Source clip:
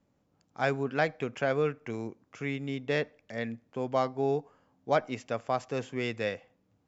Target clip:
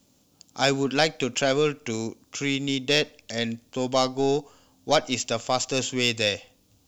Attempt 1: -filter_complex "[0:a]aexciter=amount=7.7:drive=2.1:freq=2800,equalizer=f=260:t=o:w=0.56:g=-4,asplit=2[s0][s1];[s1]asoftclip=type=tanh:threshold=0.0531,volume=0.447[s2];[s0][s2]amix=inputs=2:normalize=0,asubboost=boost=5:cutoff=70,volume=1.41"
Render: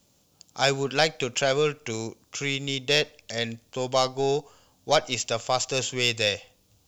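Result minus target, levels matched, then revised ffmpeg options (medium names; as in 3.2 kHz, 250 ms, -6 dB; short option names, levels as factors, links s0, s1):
250 Hz band -5.5 dB
-filter_complex "[0:a]aexciter=amount=7.7:drive=2.1:freq=2800,equalizer=f=260:t=o:w=0.56:g=4.5,asplit=2[s0][s1];[s1]asoftclip=type=tanh:threshold=0.0531,volume=0.447[s2];[s0][s2]amix=inputs=2:normalize=0,asubboost=boost=5:cutoff=70,volume=1.41"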